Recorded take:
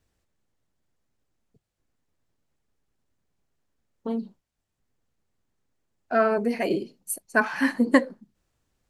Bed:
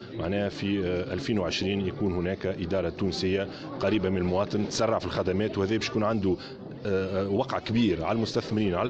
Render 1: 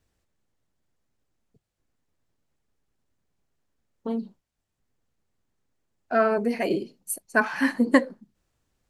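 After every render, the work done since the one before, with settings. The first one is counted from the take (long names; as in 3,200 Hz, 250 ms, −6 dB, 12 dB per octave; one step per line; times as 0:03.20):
no processing that can be heard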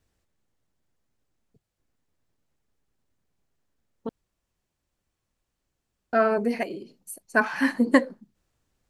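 0:04.09–0:06.13: fill with room tone
0:06.63–0:07.29: downward compressor 2 to 1, threshold −41 dBFS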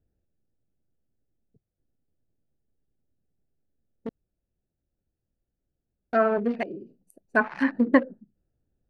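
adaptive Wiener filter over 41 samples
treble cut that deepens with the level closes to 2,200 Hz, closed at −19 dBFS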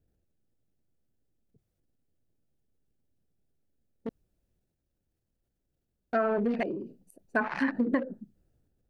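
transient designer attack −2 dB, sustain +6 dB
downward compressor 12 to 1, threshold −23 dBFS, peak gain reduction 10 dB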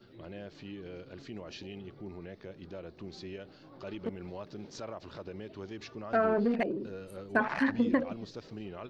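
mix in bed −16.5 dB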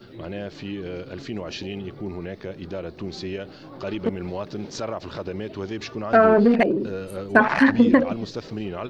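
level +12 dB
brickwall limiter −3 dBFS, peak gain reduction 1 dB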